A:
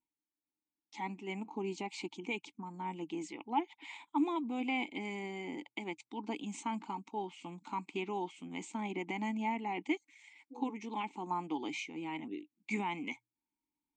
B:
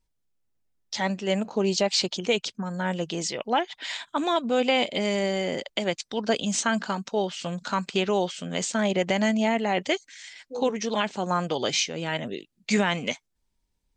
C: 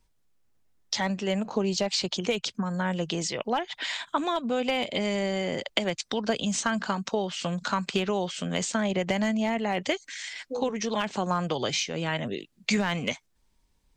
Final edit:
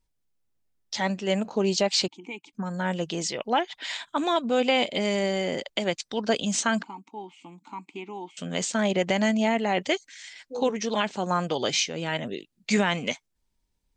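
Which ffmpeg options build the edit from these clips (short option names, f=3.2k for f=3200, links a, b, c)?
-filter_complex "[0:a]asplit=2[a][b];[1:a]asplit=3[c][d][e];[c]atrim=end=2.082[f];[a]atrim=start=2.078:end=2.532[g];[d]atrim=start=2.528:end=6.832[h];[b]atrim=start=6.828:end=8.372[i];[e]atrim=start=8.368[j];[f][g]acrossfade=d=0.004:c1=hsin:c2=hsin[k];[k][h]acrossfade=d=0.004:c1=hsin:c2=hsin[l];[l][i]acrossfade=d=0.004:c1=hsin:c2=hsin[m];[m][j]acrossfade=d=0.004:c1=hsin:c2=hsin"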